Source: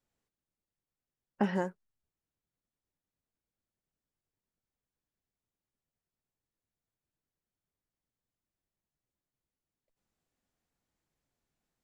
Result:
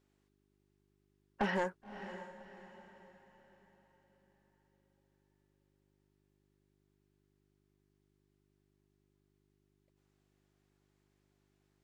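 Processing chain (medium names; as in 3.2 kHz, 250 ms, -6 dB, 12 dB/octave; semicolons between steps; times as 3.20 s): overdrive pedal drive 20 dB, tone 4.1 kHz, clips at -15 dBFS; mains buzz 50 Hz, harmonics 8, -70 dBFS -1 dB/octave; echo that smears into a reverb 573 ms, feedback 41%, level -12 dB; trim -7 dB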